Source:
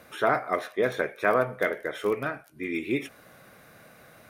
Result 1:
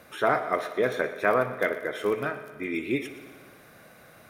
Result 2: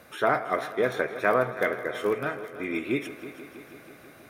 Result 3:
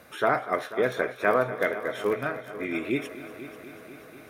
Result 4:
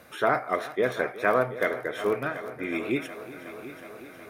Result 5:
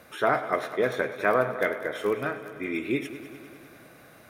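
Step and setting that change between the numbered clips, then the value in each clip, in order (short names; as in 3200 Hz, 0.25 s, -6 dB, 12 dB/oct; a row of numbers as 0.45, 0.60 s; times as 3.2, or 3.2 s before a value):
multi-head echo, time: 60, 162, 245, 367, 100 ms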